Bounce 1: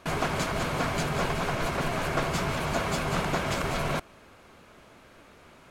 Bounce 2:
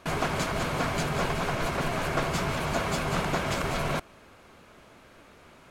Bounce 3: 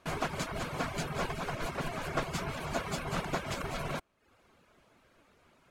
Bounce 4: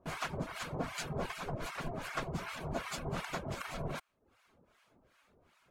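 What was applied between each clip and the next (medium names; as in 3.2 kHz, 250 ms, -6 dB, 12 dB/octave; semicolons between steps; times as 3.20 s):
no audible change
reverb removal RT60 0.61 s; upward expansion 1.5:1, over -38 dBFS; trim -3 dB
harmonic tremolo 2.6 Hz, depth 100%, crossover 900 Hz; trim +1 dB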